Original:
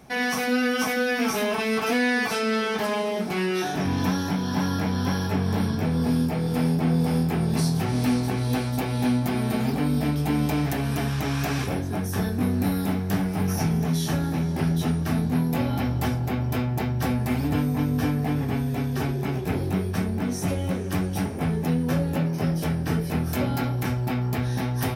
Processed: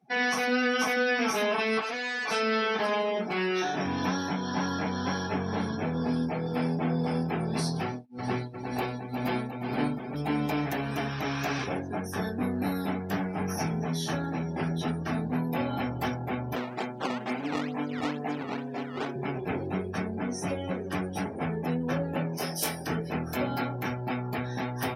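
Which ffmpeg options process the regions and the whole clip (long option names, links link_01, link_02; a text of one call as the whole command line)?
ffmpeg -i in.wav -filter_complex "[0:a]asettb=1/sr,asplit=3[link_01][link_02][link_03];[link_01]atrim=end=1.814[link_04];[link_02]atrim=start=1.81:end=2.28,asetpts=PTS-STARTPTS,afade=type=in:duration=0.004:curve=qsin,afade=type=out:start_time=0.466:duration=0.004:curve=qsin,highpass=frequency=550:poles=1,volume=29.5dB,asoftclip=hard,volume=-29.5dB[link_05];[link_03]atrim=start=2.276[link_06];[link_04][link_05]acrossfade=duration=0.004:curve1=hsin:curve2=qsin[link_07];[link_07][link_06]acrossfade=duration=0.004:curve1=qsin:curve2=hsin,asettb=1/sr,asplit=3[link_08][link_09][link_10];[link_08]atrim=end=7.834[link_11];[link_09]atrim=start=7.83:end=10.15,asetpts=PTS-STARTPTS,afade=type=in:duration=0.004:curve=qsin,afade=type=out:start_time=2.316:duration=0.004:curve=qsin,tremolo=f=2:d=0.99,aecho=1:1:356|408|470|711:0.562|0.126|0.596|0.376,atrim=end_sample=102312[link_12];[link_10]atrim=start=10.146[link_13];[link_11][link_12]acrossfade=duration=0.004:curve1=hsin:curve2=qsin[link_14];[link_14][link_13]acrossfade=duration=0.004:curve1=qsin:curve2=hsin,asettb=1/sr,asplit=3[link_15][link_16][link_17];[link_15]atrim=end=16.554[link_18];[link_16]atrim=start=16.55:end=19.16,asetpts=PTS-STARTPTS,afade=type=in:duration=0.004:curve=qsin,afade=type=out:start_time=2.606:duration=0.004:curve=qsin,highpass=230,acrusher=samples=16:mix=1:aa=0.000001:lfo=1:lforange=25.6:lforate=2.2[link_19];[link_17]atrim=start=19.156[link_20];[link_18][link_19]acrossfade=duration=0.004:curve1=hsin:curve2=qsin[link_21];[link_21][link_20]acrossfade=duration=0.004:curve1=qsin:curve2=hsin,asettb=1/sr,asplit=3[link_22][link_23][link_24];[link_22]atrim=end=22.374[link_25];[link_23]atrim=start=22.37:end=22.87,asetpts=PTS-STARTPTS,afade=type=in:duration=0.004:curve=qsin,afade=type=out:start_time=0.496:duration=0.004:curve=qsin,bass=frequency=250:gain=-9,treble=frequency=4000:gain=14,asplit=2[link_26][link_27];[link_27]adelay=23,volume=-7dB[link_28];[link_26][link_28]amix=inputs=2:normalize=0,atrim=end_sample=22050[link_29];[link_24]atrim=start=22.866[link_30];[link_25][link_29]acrossfade=duration=0.004:curve1=hsin:curve2=qsin[link_31];[link_31][link_30]acrossfade=duration=0.004:curve1=qsin:curve2=hsin,highpass=frequency=370:poles=1,highshelf=frequency=7500:gain=-5.5,afftdn=noise_reduction=26:noise_floor=-43" out.wav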